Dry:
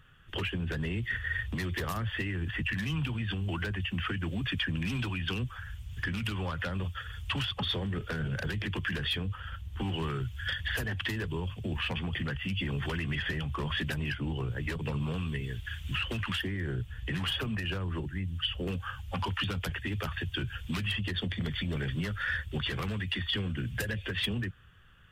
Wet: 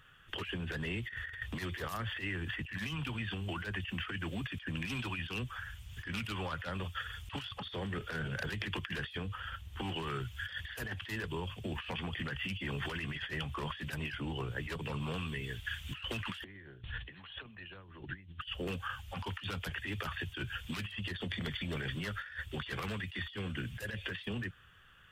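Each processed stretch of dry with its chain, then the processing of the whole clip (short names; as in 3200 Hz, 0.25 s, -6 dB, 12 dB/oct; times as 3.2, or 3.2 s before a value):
16.44–18.41 notch 1300 Hz, Q 25 + negative-ratio compressor -41 dBFS, ratio -0.5 + brick-wall FIR low-pass 4300 Hz
whole clip: low shelf 340 Hz -9.5 dB; negative-ratio compressor -38 dBFS, ratio -0.5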